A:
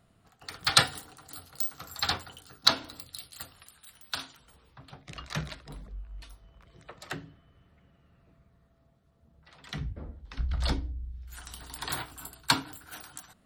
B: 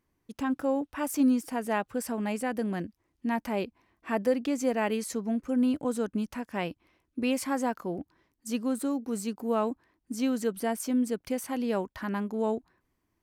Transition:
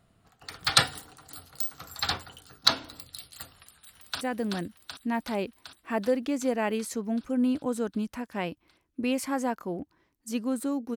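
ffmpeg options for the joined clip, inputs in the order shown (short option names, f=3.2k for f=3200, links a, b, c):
-filter_complex "[0:a]apad=whole_dur=10.96,atrim=end=10.96,atrim=end=4.212[a];[1:a]atrim=start=2.398:end=9.15[b];[a][b]acrossfade=d=0.004:c1=hsin:c2=hsin,asplit=2[c][d];[d]afade=t=in:st=3.57:d=0.01,afade=t=out:st=4.21:d=0.01,aecho=0:1:380|760|1140|1520|1900|2280|2660|3040|3420|3800|4180|4560:0.562341|0.421756|0.316317|0.237238|0.177928|0.133446|0.100085|0.0750635|0.0562976|0.0422232|0.0316674|0.0237506[e];[c][e]amix=inputs=2:normalize=0"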